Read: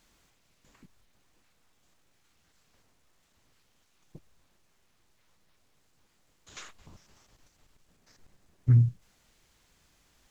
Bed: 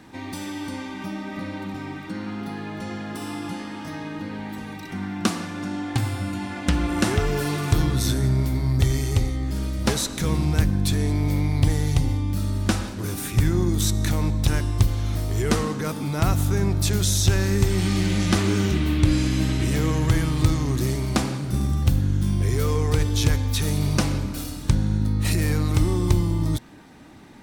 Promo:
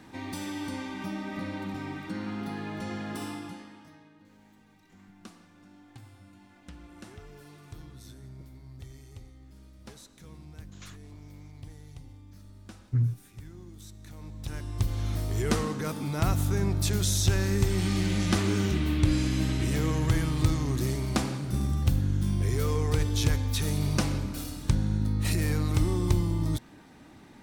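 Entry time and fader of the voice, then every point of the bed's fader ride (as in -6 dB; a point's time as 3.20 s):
4.25 s, -5.0 dB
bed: 3.22 s -3.5 dB
4.15 s -25.5 dB
14.01 s -25.5 dB
15.01 s -5 dB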